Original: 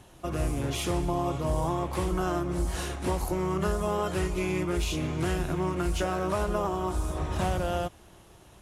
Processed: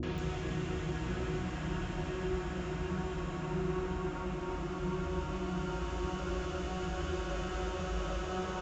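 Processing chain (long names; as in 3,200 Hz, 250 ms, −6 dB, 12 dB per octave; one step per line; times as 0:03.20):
downsampling to 16,000 Hz
extreme stretch with random phases 9.1×, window 1.00 s, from 0:05.16
three-band delay without the direct sound lows, mids, highs 30/180 ms, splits 530/5,800 Hz
level −6.5 dB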